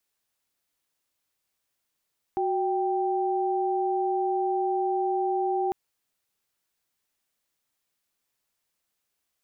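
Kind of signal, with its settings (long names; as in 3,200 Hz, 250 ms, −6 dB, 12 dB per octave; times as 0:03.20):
held notes F#4/G5 sine, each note −26 dBFS 3.35 s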